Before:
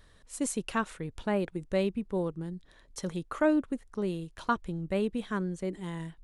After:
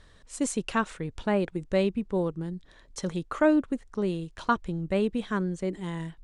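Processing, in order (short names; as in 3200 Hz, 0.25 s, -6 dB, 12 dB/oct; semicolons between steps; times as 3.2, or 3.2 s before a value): LPF 8900 Hz 24 dB/oct; gain +3.5 dB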